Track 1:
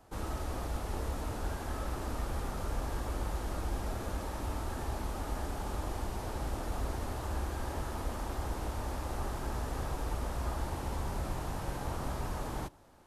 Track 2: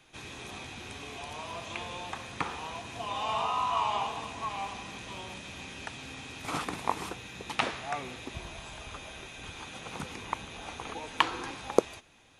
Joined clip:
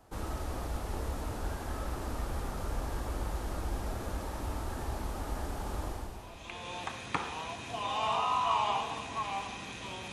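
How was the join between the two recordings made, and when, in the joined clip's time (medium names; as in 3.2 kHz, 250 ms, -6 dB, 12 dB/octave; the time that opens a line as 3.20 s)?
track 1
6.31 s: go over to track 2 from 1.57 s, crossfade 0.92 s quadratic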